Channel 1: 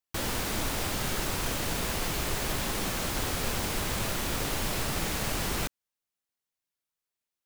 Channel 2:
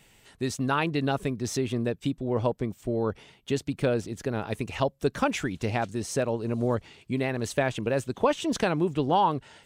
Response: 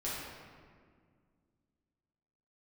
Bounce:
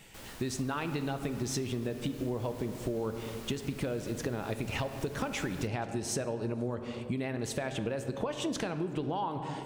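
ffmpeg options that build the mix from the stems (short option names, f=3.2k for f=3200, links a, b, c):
-filter_complex "[0:a]volume=-17dB[a];[1:a]alimiter=limit=-16.5dB:level=0:latency=1:release=395,acompressor=threshold=-29dB:ratio=2,volume=2dB,asplit=2[b][c];[c]volume=-11dB[d];[2:a]atrim=start_sample=2205[e];[d][e]afir=irnorm=-1:irlink=0[f];[a][b][f]amix=inputs=3:normalize=0,acompressor=threshold=-30dB:ratio=6"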